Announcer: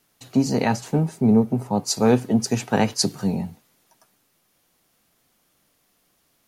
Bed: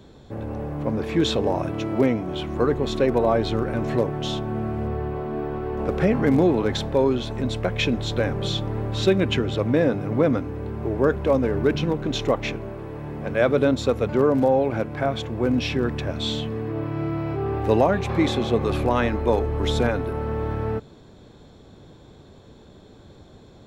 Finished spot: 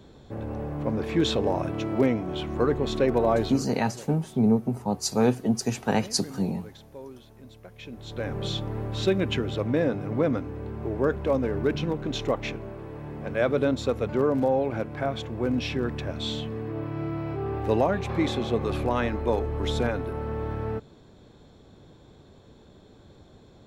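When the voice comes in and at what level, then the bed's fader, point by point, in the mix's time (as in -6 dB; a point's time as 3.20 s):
3.15 s, -4.5 dB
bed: 3.43 s -2.5 dB
3.73 s -22.5 dB
7.76 s -22.5 dB
8.36 s -4.5 dB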